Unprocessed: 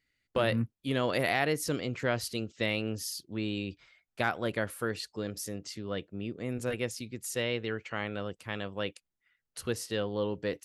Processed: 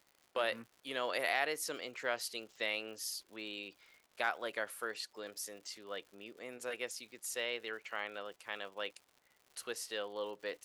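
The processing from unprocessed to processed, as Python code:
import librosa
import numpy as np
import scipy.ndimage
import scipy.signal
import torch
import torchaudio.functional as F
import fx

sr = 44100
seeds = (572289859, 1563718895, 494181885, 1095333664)

y = fx.dmg_noise_colour(x, sr, seeds[0], colour='brown', level_db=-58.0)
y = scipy.signal.sosfilt(scipy.signal.butter(2, 580.0, 'highpass', fs=sr, output='sos'), y)
y = fx.dmg_crackle(y, sr, seeds[1], per_s=150.0, level_db=-47.0)
y = y * librosa.db_to_amplitude(-3.5)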